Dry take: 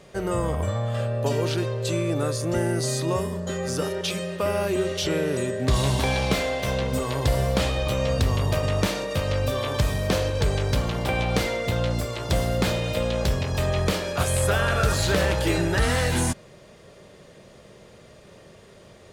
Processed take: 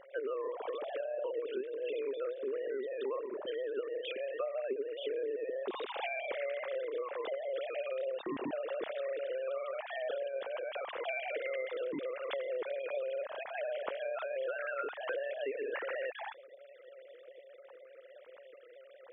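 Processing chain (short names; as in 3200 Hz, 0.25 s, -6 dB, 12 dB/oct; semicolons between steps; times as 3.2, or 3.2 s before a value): sine-wave speech; dynamic EQ 300 Hz, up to +6 dB, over -35 dBFS, Q 0.77; compressor 6:1, threshold -29 dBFS, peak gain reduction 18.5 dB; AM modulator 130 Hz, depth 30%; gain -4.5 dB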